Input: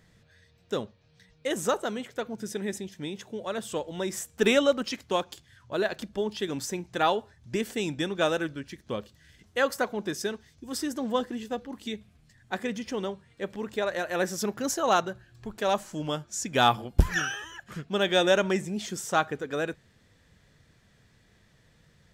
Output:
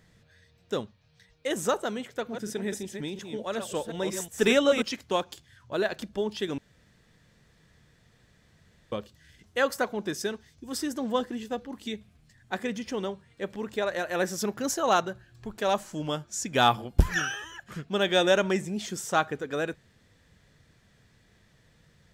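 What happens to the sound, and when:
0.8–1.48 bell 620 Hz -> 150 Hz -10 dB 1 oct
2.1–4.82 reverse delay 0.182 s, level -6.5 dB
6.58–8.92 room tone

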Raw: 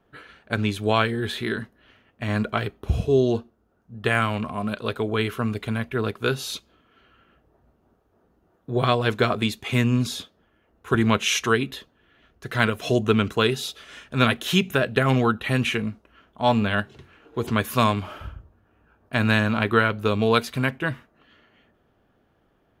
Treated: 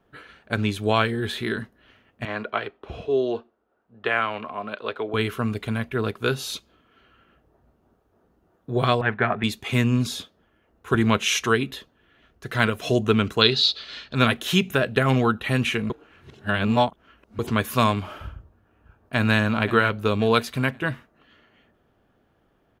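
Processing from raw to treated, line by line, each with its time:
2.25–5.14 three-band isolator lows -17 dB, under 320 Hz, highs -22 dB, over 4100 Hz
9.01–9.44 speaker cabinet 110–2300 Hz, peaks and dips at 300 Hz -9 dB, 500 Hz -8 dB, 790 Hz +6 dB, 1100 Hz -3 dB, 1800 Hz +9 dB
13.41–14.15 synth low-pass 4300 Hz, resonance Q 9.6
15.9–17.39 reverse
18.32–19.36 echo throw 0.53 s, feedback 35%, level -13 dB

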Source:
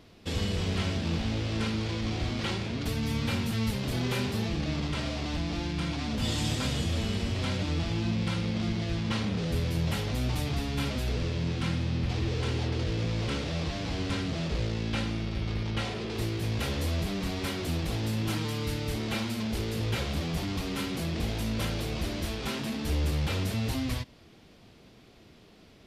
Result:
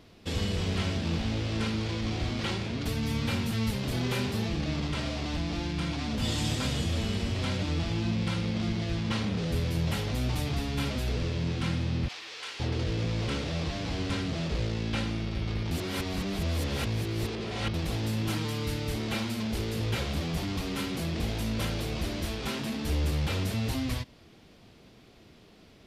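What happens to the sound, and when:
12.08–12.6 HPF 1200 Hz
15.71–17.74 reverse

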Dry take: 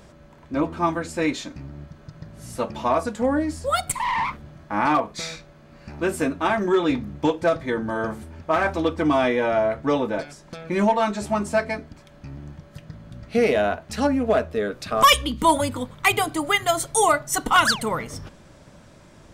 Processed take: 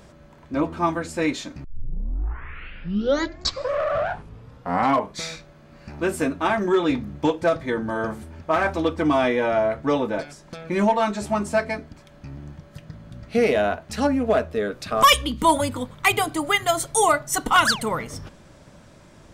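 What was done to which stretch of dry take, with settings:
1.64 tape start 3.60 s

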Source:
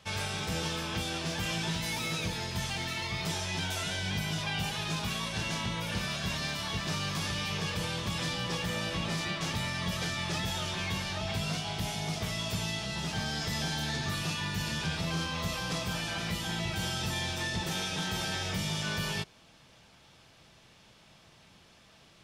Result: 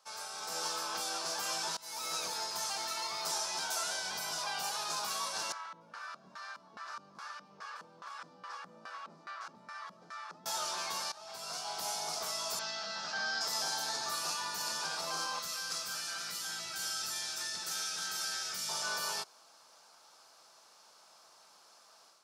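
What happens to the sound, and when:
1.77–2.17 fade in, from -23.5 dB
5.52–10.46 LFO band-pass square 2.4 Hz 210–1500 Hz
11.12–11.84 fade in, from -17.5 dB
12.59–13.41 speaker cabinet 160–5400 Hz, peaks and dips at 200 Hz +6 dB, 380 Hz -9 dB, 960 Hz -7 dB, 1600 Hz +8 dB
15.39–18.69 EQ curve 130 Hz 0 dB, 1000 Hz -14 dB, 1400 Hz -1 dB
whole clip: HPF 830 Hz 12 dB/oct; band shelf 2500 Hz -13 dB 1.3 oct; AGC gain up to 8 dB; gain -4 dB

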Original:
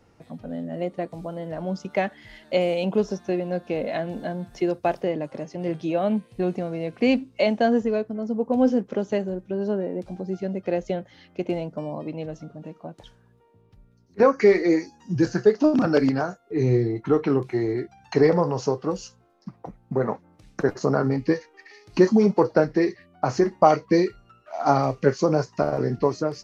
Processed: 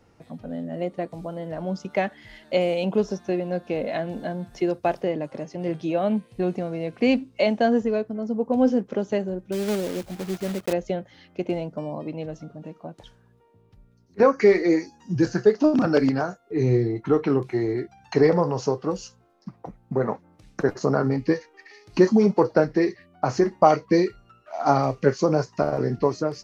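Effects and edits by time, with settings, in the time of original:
9.52–10.73 block floating point 3-bit

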